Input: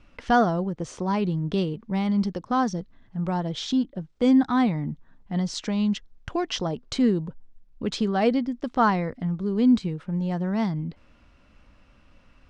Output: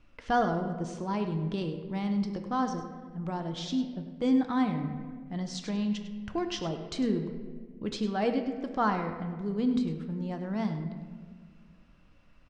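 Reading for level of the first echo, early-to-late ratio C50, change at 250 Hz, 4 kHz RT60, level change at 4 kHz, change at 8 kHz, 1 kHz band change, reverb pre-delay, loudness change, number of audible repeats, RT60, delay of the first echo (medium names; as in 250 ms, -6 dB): -12.5 dB, 7.0 dB, -6.5 dB, 1.0 s, -6.5 dB, no reading, -5.5 dB, 3 ms, -6.5 dB, 1, 1.8 s, 101 ms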